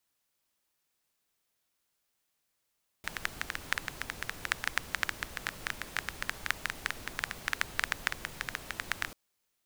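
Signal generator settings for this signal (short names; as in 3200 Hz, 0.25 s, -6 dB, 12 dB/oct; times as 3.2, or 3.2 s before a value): rain from filtered ticks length 6.09 s, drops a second 9.8, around 1700 Hz, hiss -8 dB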